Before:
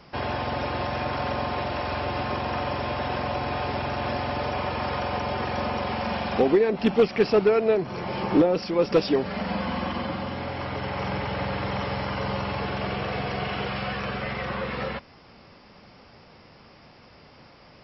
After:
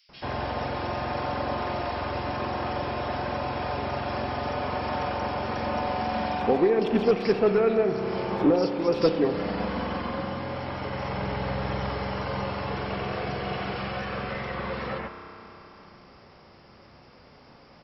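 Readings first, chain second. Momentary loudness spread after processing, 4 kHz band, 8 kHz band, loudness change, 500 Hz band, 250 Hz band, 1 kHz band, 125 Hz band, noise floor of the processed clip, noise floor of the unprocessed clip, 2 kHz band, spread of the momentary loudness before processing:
10 LU, -3.5 dB, no reading, -1.5 dB, -1.0 dB, -1.0 dB, -1.0 dB, -1.5 dB, -53 dBFS, -52 dBFS, -2.5 dB, 9 LU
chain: bands offset in time highs, lows 90 ms, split 2.7 kHz; spring tank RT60 3.6 s, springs 31 ms, chirp 30 ms, DRR 6 dB; trim -2 dB

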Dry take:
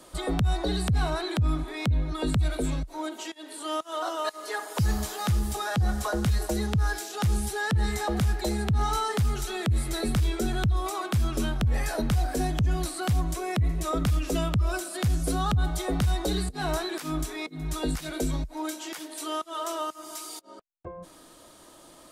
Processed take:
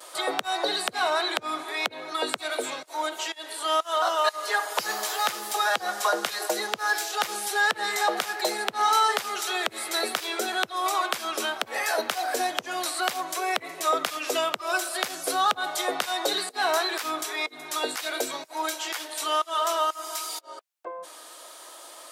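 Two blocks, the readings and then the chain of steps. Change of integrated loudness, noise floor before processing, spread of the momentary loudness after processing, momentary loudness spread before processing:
+2.0 dB, -52 dBFS, 7 LU, 8 LU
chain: vibrato 0.61 Hz 23 cents; Bessel high-pass 680 Hz, order 4; dynamic bell 9.2 kHz, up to -5 dB, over -51 dBFS, Q 0.87; trim +9 dB

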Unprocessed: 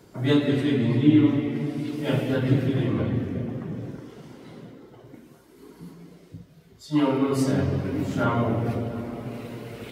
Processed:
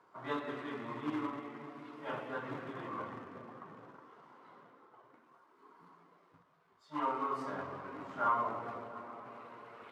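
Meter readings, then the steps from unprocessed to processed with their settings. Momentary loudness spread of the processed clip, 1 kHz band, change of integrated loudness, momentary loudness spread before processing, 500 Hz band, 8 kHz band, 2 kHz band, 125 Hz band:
19 LU, -2.0 dB, -15.5 dB, 17 LU, -15.5 dB, under -20 dB, -9.0 dB, -28.5 dB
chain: in parallel at -6.5 dB: companded quantiser 4-bit; on the sum: band-pass filter 1.1 kHz, Q 3.7; trim -2 dB

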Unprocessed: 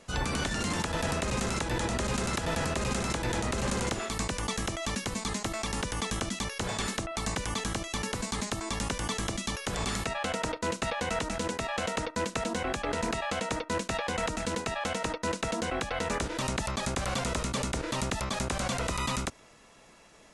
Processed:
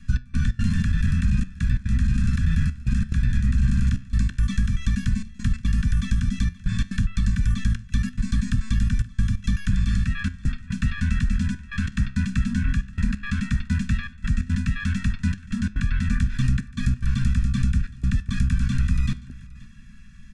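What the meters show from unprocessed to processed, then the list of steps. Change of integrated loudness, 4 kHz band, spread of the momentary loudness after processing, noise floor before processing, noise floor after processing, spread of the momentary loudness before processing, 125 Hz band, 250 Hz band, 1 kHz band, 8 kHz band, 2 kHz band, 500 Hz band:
+6.5 dB, -6.0 dB, 5 LU, -56 dBFS, -42 dBFS, 2 LU, +14.0 dB, +7.5 dB, -13.5 dB, -8.5 dB, -0.5 dB, under -25 dB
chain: Chebyshev band-stop 250–1200 Hz, order 5; tilt EQ -3.5 dB/octave; comb 1.2 ms, depth 82%; compression, threshold -19 dBFS, peak gain reduction 10 dB; trance gate "xx..xx.xxxxxxxx" 178 bpm -24 dB; flange 0.12 Hz, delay 7.7 ms, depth 8.3 ms, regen +82%; delay 527 ms -21 dB; trim +7.5 dB

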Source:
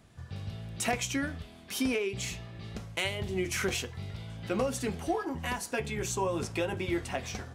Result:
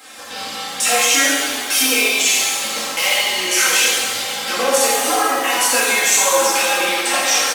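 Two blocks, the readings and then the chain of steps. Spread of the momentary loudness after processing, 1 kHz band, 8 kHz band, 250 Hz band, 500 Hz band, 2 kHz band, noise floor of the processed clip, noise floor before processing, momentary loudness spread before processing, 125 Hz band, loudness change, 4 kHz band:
8 LU, +18.5 dB, +24.0 dB, +5.5 dB, +12.0 dB, +19.5 dB, -29 dBFS, -51 dBFS, 11 LU, under -10 dB, +18.5 dB, +22.5 dB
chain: one-sided wavefolder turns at -23.5 dBFS; compression, threshold -38 dBFS, peak gain reduction 11.5 dB; flange 0.41 Hz, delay 2.3 ms, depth 8.2 ms, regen -38%; high-pass 610 Hz 12 dB/octave; treble shelf 3.6 kHz +7 dB; comb 3.8 ms, depth 88%; loudness maximiser +31 dB; pitch-shifted reverb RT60 1.6 s, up +7 st, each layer -8 dB, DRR -7.5 dB; trim -10.5 dB

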